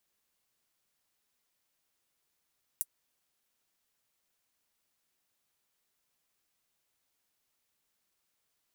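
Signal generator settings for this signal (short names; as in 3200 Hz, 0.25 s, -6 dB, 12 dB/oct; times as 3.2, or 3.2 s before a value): closed hi-hat, high-pass 9300 Hz, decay 0.05 s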